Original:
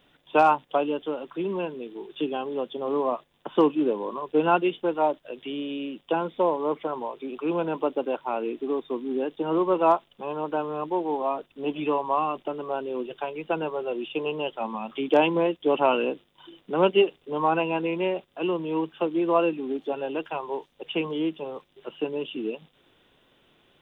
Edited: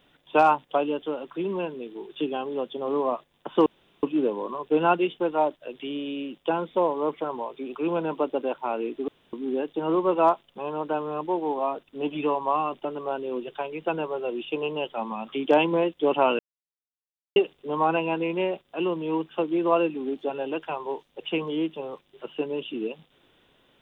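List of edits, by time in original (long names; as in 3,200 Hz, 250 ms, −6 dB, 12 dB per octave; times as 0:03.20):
0:03.66: splice in room tone 0.37 s
0:08.71–0:08.96: fill with room tone
0:16.02–0:16.99: silence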